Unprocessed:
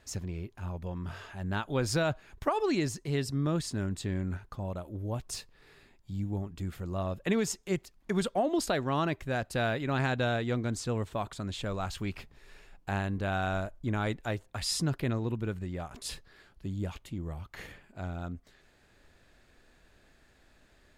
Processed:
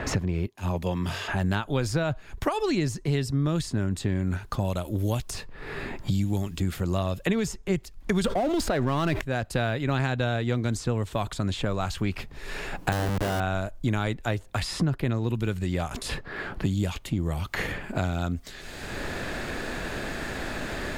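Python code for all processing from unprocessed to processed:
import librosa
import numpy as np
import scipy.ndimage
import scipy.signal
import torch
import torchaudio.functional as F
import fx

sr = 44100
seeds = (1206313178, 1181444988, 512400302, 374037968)

y = fx.chain(x, sr, fx.highpass(hz=160.0, slope=6),
    fx.peak_eq(hz=1400.0, db=-6.5, octaves=0.29),
    fx.band_widen(depth_pct=100), at=(0.46, 1.28))
y = fx.chain(y, sr, fx.power_curve(exponent=0.7),
    fx.env_flatten(amount_pct=70), at=(8.24, 9.21))
y = fx.chain(y, sr, fx.schmitt(flips_db=-37.0),
    fx.notch(hz=2400.0, q=25.0), at=(12.92, 13.4))
y = fx.low_shelf(y, sr, hz=86.0, db=7.0)
y = fx.band_squash(y, sr, depth_pct=100)
y = F.gain(torch.from_numpy(y), 3.0).numpy()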